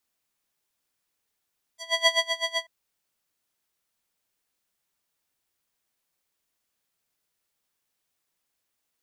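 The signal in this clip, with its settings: synth patch with tremolo E5, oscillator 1 square, oscillator 2 sine, interval +7 st, detune 26 cents, oscillator 2 level -6 dB, sub -23.5 dB, noise -28 dB, filter bandpass, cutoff 2 kHz, Q 1.6, filter envelope 2 oct, filter decay 0.06 s, filter sustain 35%, attack 334 ms, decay 0.12 s, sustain -9 dB, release 0.07 s, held 0.82 s, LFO 7.9 Hz, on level 21.5 dB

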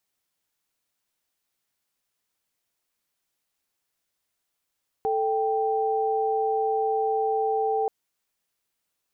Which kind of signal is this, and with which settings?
chord A4/G5 sine, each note -24.5 dBFS 2.83 s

